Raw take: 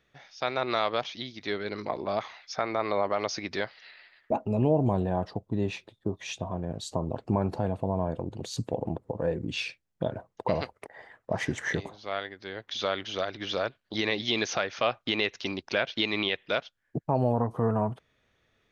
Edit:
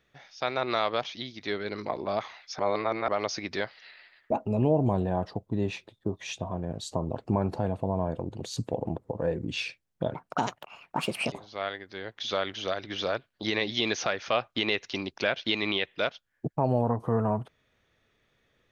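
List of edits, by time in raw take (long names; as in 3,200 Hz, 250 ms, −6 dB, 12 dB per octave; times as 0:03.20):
0:02.59–0:03.08: reverse
0:10.14–0:11.83: play speed 143%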